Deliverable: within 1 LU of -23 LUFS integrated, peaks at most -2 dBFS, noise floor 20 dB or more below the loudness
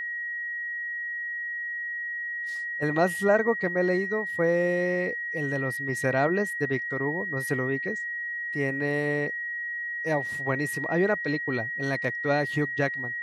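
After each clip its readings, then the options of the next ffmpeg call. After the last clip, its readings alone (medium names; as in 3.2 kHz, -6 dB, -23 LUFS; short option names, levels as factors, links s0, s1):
steady tone 1.9 kHz; tone level -30 dBFS; loudness -27.5 LUFS; peak level -9.5 dBFS; loudness target -23.0 LUFS
-> -af "bandreject=f=1900:w=30"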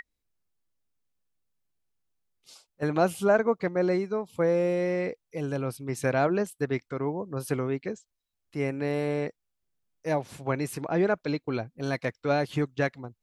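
steady tone not found; loudness -28.5 LUFS; peak level -10.0 dBFS; loudness target -23.0 LUFS
-> -af "volume=1.88"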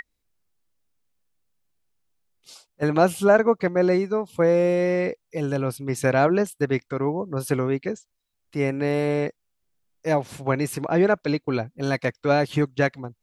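loudness -23.5 LUFS; peak level -5.0 dBFS; noise floor -77 dBFS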